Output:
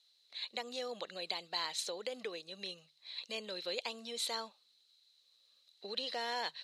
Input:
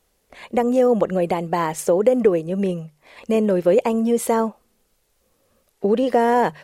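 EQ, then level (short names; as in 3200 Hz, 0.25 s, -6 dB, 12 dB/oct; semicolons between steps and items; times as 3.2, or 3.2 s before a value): band-pass 4000 Hz, Q 16; +16.5 dB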